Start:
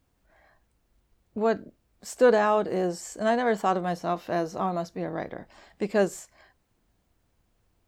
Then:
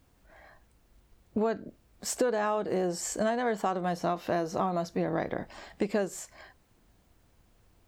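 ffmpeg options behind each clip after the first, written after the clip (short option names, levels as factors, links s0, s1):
-af "acompressor=threshold=0.0282:ratio=12,volume=2"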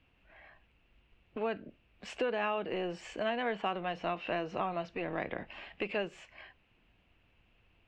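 -filter_complex "[0:a]acrossover=split=240[s0][s1];[s0]aeval=exprs='0.0119*(abs(mod(val(0)/0.0119+3,4)-2)-1)':c=same[s2];[s2][s1]amix=inputs=2:normalize=0,lowpass=f=2700:t=q:w=6.3,volume=0.531"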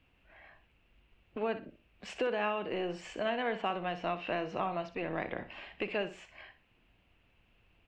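-af "aecho=1:1:62|124|186:0.251|0.0628|0.0157"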